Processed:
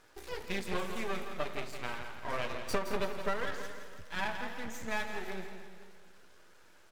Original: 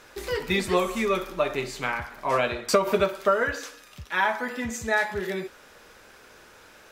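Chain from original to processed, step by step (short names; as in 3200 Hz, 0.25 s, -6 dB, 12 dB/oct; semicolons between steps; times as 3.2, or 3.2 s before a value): bin magnitudes rounded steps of 15 dB; half-wave rectifier; on a send: feedback echo 0.168 s, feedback 49%, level -9 dB; on the sum: warbling echo 0.215 s, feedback 46%, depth 122 cents, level -13.5 dB; gain -8 dB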